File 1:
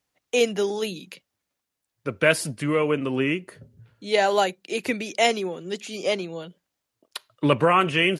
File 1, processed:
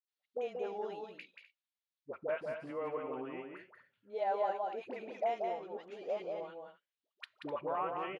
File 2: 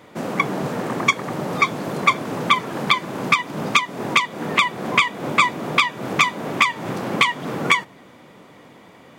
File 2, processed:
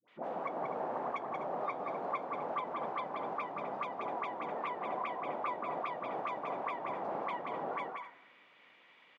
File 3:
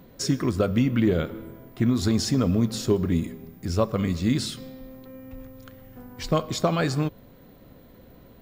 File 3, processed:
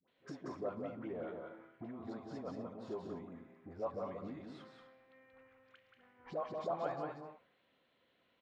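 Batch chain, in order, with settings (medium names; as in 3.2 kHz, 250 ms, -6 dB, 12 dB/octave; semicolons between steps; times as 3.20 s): treble shelf 6.5 kHz -11.5 dB; compression 3:1, threshold -27 dBFS; phase dispersion highs, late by 82 ms, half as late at 690 Hz; auto-wah 760–4000 Hz, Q 2.3, down, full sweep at -30.5 dBFS; on a send: multi-tap echo 182/252 ms -4.5/-12 dB; on the sum: tape noise reduction on one side only decoder only; trim -2 dB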